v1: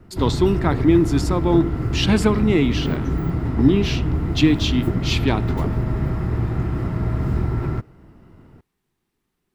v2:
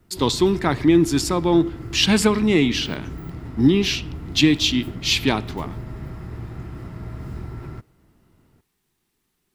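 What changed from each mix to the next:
background -11.5 dB; master: add high shelf 2700 Hz +9 dB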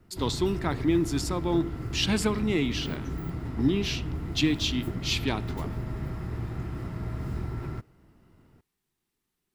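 speech -9.0 dB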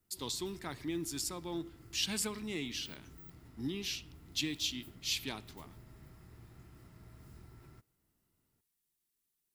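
background -8.5 dB; master: add pre-emphasis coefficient 0.8

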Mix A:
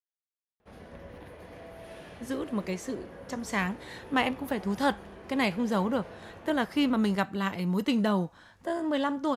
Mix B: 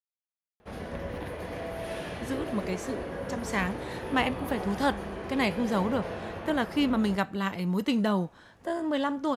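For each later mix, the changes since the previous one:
background +10.0 dB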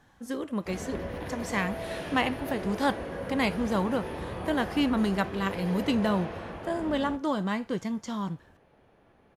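speech: entry -2.00 s

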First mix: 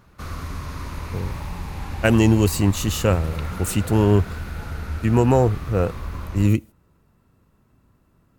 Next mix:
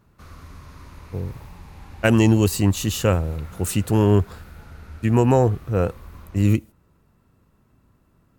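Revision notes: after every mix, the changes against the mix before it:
background -11.0 dB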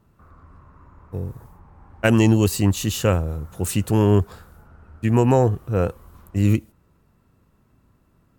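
background: add ladder low-pass 1600 Hz, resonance 30%

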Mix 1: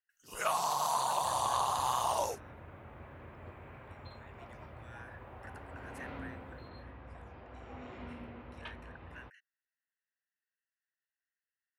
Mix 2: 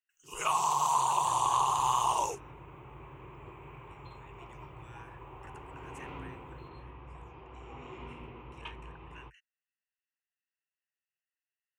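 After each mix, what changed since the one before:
master: add ripple EQ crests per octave 0.7, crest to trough 12 dB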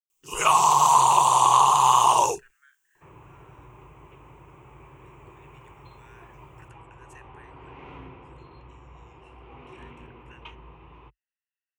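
speech: entry +1.15 s; first sound +10.5 dB; second sound: entry +1.80 s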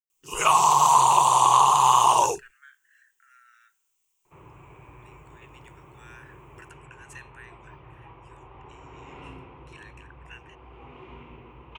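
speech +7.5 dB; second sound: entry +1.30 s

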